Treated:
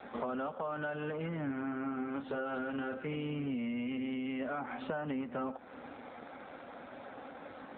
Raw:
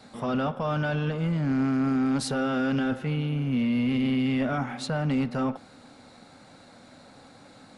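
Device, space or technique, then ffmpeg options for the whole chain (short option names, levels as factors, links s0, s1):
voicemail: -filter_complex "[0:a]asettb=1/sr,asplit=3[s0][s1][s2];[s0]atrim=end=1.434[s3];[s1]atrim=start=1.43:end=2.99,asetpts=PTS-STARTPTS,afade=t=in:d=0.004:c=qsin,afade=t=out:st=1.556:d=0.004:c=qsin,asplit=2[s4][s5];[s5]adelay=36,volume=0.447[s6];[s4][s6]amix=inputs=2:normalize=0,atrim=end_sample=68796[s7];[s2]atrim=start=2.986[s8];[s3][s7]acrossfade=d=0.004:c1=hsin:c2=qsin[s9];[s9][s8]acrossfade=d=0.004:c1=qsin:c2=hsin,highpass=320,lowpass=2700,acompressor=threshold=0.00891:ratio=10,volume=2.37" -ar 8000 -c:a libopencore_amrnb -b:a 7400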